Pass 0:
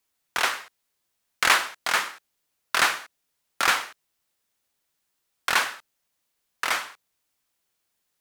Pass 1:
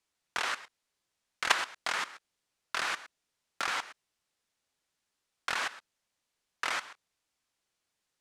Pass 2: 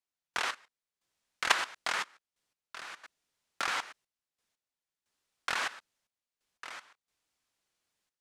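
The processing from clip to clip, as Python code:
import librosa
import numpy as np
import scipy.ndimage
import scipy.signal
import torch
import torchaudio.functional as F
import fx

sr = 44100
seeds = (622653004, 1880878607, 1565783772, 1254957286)

y1 = fx.level_steps(x, sr, step_db=16)
y1 = scipy.signal.sosfilt(scipy.signal.butter(2, 8300.0, 'lowpass', fs=sr, output='sos'), y1)
y2 = fx.step_gate(y1, sr, bpm=89, pattern='..x...xxxxxx', floor_db=-12.0, edge_ms=4.5)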